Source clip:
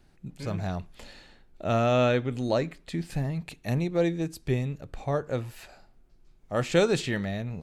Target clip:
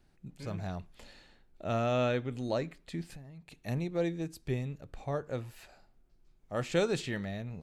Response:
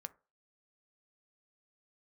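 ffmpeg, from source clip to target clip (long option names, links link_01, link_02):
-filter_complex "[0:a]asettb=1/sr,asplit=3[link_01][link_02][link_03];[link_01]atrim=end=3.034[link_04];[link_02]atrim=start=3.03:end=3.52,asetpts=PTS-STARTPTS,afade=type=in:duration=0.004:curve=qsin,afade=type=out:start_time=0.486:duration=0.004:curve=qsin,acompressor=threshold=-39dB:ratio=16[link_05];[link_03]atrim=start=3.516[link_06];[link_04][link_05]acrossfade=duration=0.004:curve1=hsin:curve2=qsin[link_07];[link_07][link_06]acrossfade=duration=0.004:curve1=qsin:curve2=hsin,volume=-6.5dB"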